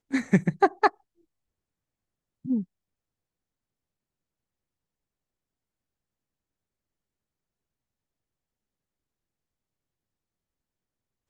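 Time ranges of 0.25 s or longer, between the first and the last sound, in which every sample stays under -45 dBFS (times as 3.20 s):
0.90–2.45 s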